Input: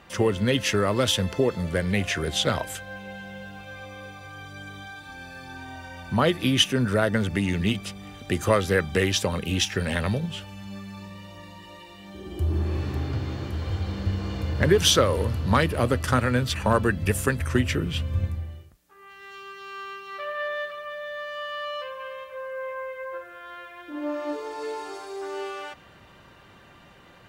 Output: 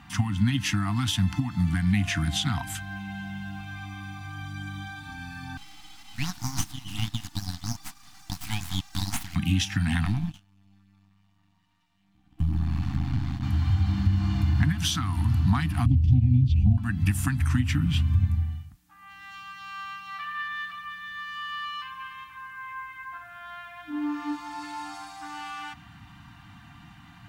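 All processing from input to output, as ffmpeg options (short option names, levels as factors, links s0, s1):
-filter_complex "[0:a]asettb=1/sr,asplit=3[s0][s1][s2];[s0]atrim=end=5.574[s3];[s1]atrim=start=5.57:end=9.36,asetpts=PTS-STARTPTS,afade=t=in:d=0.004:c=qsin,afade=t=out:st=3.786:d=0.004:c=qsin,highpass=f=1200:w=0.5412,highpass=f=1200:w=1.3066,aeval=exprs='abs(val(0))':c=same[s4];[s2]atrim=start=9.356[s5];[s3][s4]acrossfade=d=0.004:c1=hsin:c2=qsin[s6];[s6][s5]acrossfade=d=0.004:c1=qsin:c2=hsin,asettb=1/sr,asplit=3[s7][s8][s9];[s7]atrim=end=10.054[s10];[s8]atrim=start=10.05:end=13.43,asetpts=PTS-STARTPTS,afade=t=in:d=0.004:c=qsin,afade=t=out:st=3.376:d=0.004:c=qsin,aeval=exprs='max(val(0),0)':c=same,agate=range=0.0708:threshold=0.0158:ratio=16:release=100:detection=peak[s11];[s9]atrim=start=13.426[s12];[s10][s11]acrossfade=d=0.004:c1=hsin:c2=qsin[s13];[s13][s12]acrossfade=d=0.004:c1=qsin:c2=hsin,asettb=1/sr,asplit=3[s14][s15][s16];[s14]atrim=end=15.864[s17];[s15]atrim=start=15.86:end=16.78,asetpts=PTS-STARTPTS,afade=t=in:d=0.004:c=qsin,afade=t=out:st=0.916:d=0.004:c=qsin,acrossover=split=5800[s18][s19];[s19]acompressor=threshold=0.00282:ratio=4:attack=1:release=60[s20];[s18][s20]amix=inputs=2:normalize=0,asuperstop=centerf=1300:order=8:qfactor=0.69,aemphasis=mode=reproduction:type=riaa[s21];[s16]atrim=start=16.776[s22];[s17][s21]acrossfade=d=0.004:c1=hsin:c2=qsin[s23];[s23][s22]acrossfade=d=0.004:c1=qsin:c2=hsin,acompressor=threshold=0.0631:ratio=6,afftfilt=real='re*(1-between(b*sr/4096,320,680))':imag='im*(1-between(b*sr/4096,320,680))':win_size=4096:overlap=0.75,equalizer=f=120:w=0.57:g=8"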